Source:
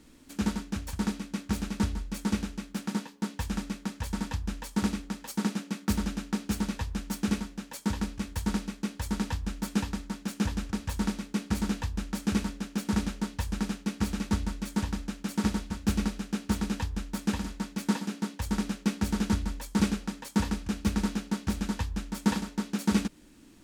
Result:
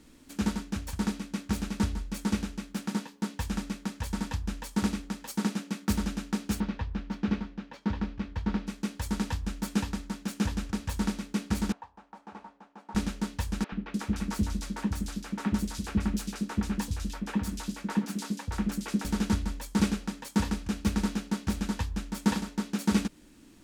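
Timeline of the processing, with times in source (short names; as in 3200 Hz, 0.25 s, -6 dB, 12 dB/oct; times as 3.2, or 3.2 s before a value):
6.6–8.67 air absorption 250 m
11.72–12.95 band-pass 860 Hz, Q 3.5
13.64–19.05 three bands offset in time mids, lows, highs 80/300 ms, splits 450/3100 Hz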